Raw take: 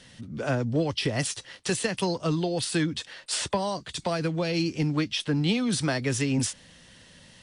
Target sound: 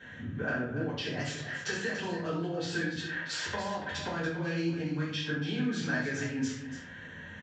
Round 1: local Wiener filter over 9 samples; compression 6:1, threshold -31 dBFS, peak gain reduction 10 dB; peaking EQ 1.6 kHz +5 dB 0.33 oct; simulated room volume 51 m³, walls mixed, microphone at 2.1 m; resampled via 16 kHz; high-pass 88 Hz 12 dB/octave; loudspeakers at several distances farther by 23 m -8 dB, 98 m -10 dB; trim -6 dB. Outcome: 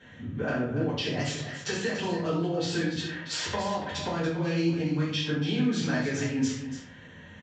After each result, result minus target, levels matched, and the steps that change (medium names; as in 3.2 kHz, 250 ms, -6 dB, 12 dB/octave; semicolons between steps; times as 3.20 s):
compression: peak gain reduction -5.5 dB; 2 kHz band -5.5 dB
change: compression 6:1, threshold -37.5 dBFS, peak gain reduction 15.5 dB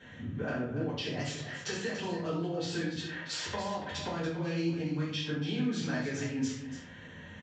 2 kHz band -5.0 dB
change: peaking EQ 1.6 kHz +14 dB 0.33 oct